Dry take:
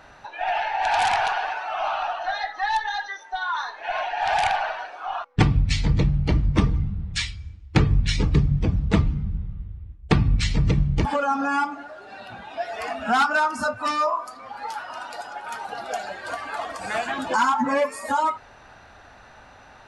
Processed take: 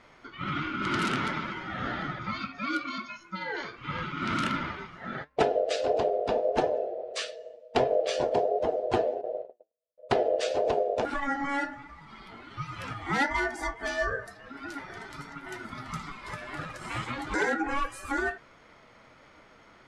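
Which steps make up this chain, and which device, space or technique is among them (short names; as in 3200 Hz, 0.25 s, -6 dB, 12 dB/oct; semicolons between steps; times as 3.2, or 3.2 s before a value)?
9.21–9.98 gate -27 dBFS, range -48 dB; alien voice (ring modulator 560 Hz; flange 1.5 Hz, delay 6.1 ms, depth 3.2 ms, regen +72%)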